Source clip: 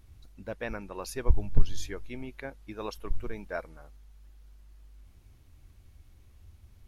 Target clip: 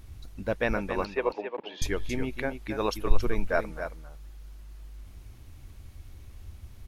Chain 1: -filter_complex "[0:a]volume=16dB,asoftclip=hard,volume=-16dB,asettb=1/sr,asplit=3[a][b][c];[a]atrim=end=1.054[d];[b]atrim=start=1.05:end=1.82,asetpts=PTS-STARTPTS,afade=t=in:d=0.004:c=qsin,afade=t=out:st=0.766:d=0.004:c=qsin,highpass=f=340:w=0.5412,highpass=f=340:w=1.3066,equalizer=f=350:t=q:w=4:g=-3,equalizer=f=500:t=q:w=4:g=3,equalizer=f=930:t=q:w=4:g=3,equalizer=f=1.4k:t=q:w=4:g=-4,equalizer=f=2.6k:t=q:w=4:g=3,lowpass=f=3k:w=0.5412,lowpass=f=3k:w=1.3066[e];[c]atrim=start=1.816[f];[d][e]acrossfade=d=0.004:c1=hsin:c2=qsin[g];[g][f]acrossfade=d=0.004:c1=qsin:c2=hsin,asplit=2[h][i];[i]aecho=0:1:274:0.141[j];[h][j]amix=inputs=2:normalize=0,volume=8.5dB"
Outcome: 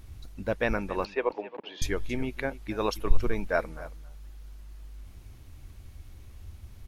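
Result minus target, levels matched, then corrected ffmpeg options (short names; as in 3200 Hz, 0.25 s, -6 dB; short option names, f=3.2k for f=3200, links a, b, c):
echo-to-direct -8.5 dB
-filter_complex "[0:a]volume=16dB,asoftclip=hard,volume=-16dB,asettb=1/sr,asplit=3[a][b][c];[a]atrim=end=1.054[d];[b]atrim=start=1.05:end=1.82,asetpts=PTS-STARTPTS,afade=t=in:d=0.004:c=qsin,afade=t=out:st=0.766:d=0.004:c=qsin,highpass=f=340:w=0.5412,highpass=f=340:w=1.3066,equalizer=f=350:t=q:w=4:g=-3,equalizer=f=500:t=q:w=4:g=3,equalizer=f=930:t=q:w=4:g=3,equalizer=f=1.4k:t=q:w=4:g=-4,equalizer=f=2.6k:t=q:w=4:g=3,lowpass=f=3k:w=0.5412,lowpass=f=3k:w=1.3066[e];[c]atrim=start=1.816[f];[d][e]acrossfade=d=0.004:c1=hsin:c2=qsin[g];[g][f]acrossfade=d=0.004:c1=qsin:c2=hsin,asplit=2[h][i];[i]aecho=0:1:274:0.376[j];[h][j]amix=inputs=2:normalize=0,volume=8.5dB"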